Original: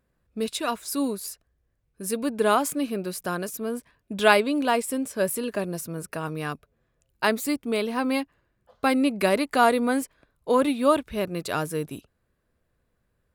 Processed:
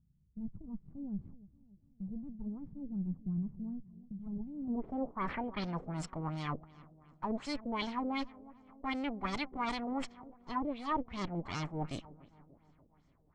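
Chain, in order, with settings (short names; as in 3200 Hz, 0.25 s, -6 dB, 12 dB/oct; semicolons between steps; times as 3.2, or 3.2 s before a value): minimum comb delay 0.92 ms; high shelf 3900 Hz -6 dB; reverse; compressor 6:1, threshold -36 dBFS, peak gain reduction 19 dB; reverse; low-pass sweep 160 Hz -> 7600 Hz, 4.52–5.77; on a send: darkening echo 0.291 s, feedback 59%, low-pass 1800 Hz, level -19 dB; on the sum: LFO low-pass sine 2.7 Hz 460–6000 Hz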